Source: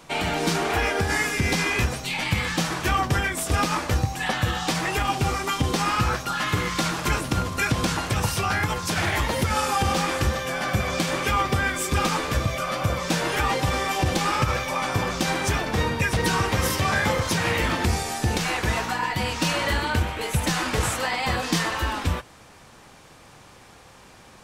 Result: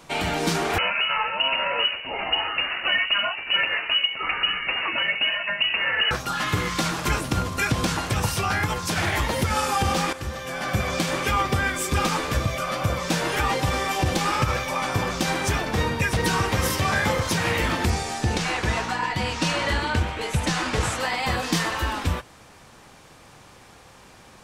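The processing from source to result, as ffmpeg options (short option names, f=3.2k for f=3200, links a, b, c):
-filter_complex "[0:a]asettb=1/sr,asplit=3[a][b][c];[a]atrim=end=0.784[d];[b]atrim=start=0.78:end=6.11,asetpts=PTS-STARTPTS,afade=t=in:d=0.004:c=qsin,afade=t=out:st=5.326:d=0.004:c=qsin,lowpass=f=2.6k:t=q:w=0.5098,lowpass=f=2.6k:t=q:w=0.6013,lowpass=f=2.6k:t=q:w=0.9,lowpass=f=2.6k:t=q:w=2.563,afreqshift=-3000[e];[c]atrim=start=6.106[f];[d][e]acrossfade=d=0.004:c1=hsin:c2=qsin[g];[g][f]acrossfade=d=0.004:c1=qsin:c2=hsin,asettb=1/sr,asplit=3[h][i][j];[h]atrim=end=17.904[k];[i]atrim=start=17.9:end=21.01,asetpts=PTS-STARTPTS,afade=t=in:d=0.004:c=qsin,afade=t=out:st=3.106:d=0.004:c=qsin,lowpass=8.3k[l];[j]atrim=start=21.006[m];[k][l]acrossfade=d=0.004:c1=hsin:c2=qsin[n];[n][m]acrossfade=d=0.004:c1=qsin:c2=hsin,asplit=2[o][p];[o]atrim=end=10.13,asetpts=PTS-STARTPTS,afade=t=out:st=10.126:d=0.004:c=hsin:silence=0.237137[q];[p]atrim=start=10.13,asetpts=PTS-STARTPTS,afade=t=in:d=0.67:silence=0.237137[r];[q][r]concat=n=2:v=0:a=1"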